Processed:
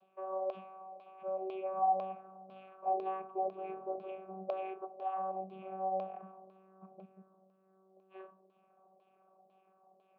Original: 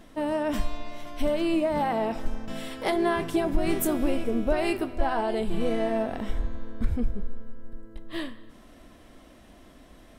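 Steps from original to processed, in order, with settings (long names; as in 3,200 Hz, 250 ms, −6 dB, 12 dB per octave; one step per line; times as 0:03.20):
channel vocoder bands 16, saw 190 Hz
auto-filter low-pass saw down 2 Hz 530–4,300 Hz
formant filter a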